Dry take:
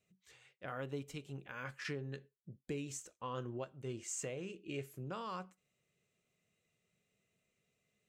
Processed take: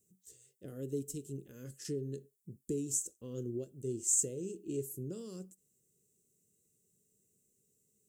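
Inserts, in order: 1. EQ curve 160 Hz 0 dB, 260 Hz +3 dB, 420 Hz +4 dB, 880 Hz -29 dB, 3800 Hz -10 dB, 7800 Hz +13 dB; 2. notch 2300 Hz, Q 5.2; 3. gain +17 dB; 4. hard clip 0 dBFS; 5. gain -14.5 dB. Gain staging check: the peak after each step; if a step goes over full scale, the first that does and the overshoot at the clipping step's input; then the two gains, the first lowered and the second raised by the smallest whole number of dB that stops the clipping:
-20.5, -20.5, -3.5, -3.5, -18.0 dBFS; no overload

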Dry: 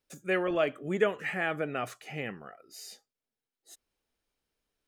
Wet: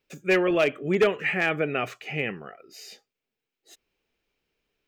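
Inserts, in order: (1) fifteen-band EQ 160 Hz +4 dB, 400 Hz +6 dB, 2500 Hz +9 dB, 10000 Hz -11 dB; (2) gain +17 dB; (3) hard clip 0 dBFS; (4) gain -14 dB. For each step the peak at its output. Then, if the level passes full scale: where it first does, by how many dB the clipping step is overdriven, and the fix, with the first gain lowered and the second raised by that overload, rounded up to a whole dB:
-8.5, +8.5, 0.0, -14.0 dBFS; step 2, 8.5 dB; step 2 +8 dB, step 4 -5 dB

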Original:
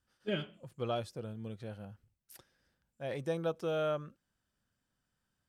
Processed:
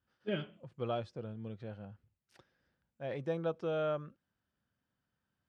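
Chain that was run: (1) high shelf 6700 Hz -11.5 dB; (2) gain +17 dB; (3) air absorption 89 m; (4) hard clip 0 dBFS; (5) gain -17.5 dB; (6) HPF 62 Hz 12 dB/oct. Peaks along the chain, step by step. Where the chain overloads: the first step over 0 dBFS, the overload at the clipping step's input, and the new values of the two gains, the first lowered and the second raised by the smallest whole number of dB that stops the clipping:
-21.5, -4.5, -5.0, -5.0, -22.5, -23.0 dBFS; no overload

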